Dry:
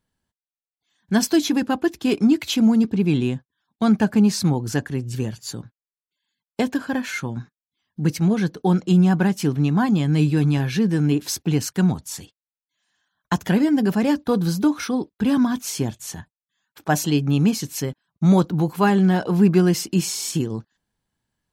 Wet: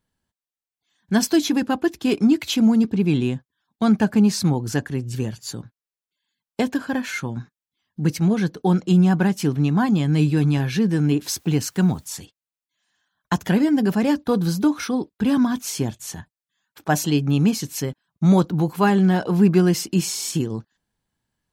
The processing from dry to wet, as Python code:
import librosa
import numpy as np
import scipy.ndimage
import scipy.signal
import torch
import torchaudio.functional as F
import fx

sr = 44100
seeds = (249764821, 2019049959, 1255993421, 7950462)

y = fx.quant_dither(x, sr, seeds[0], bits=10, dither='triangular', at=(11.23, 12.14))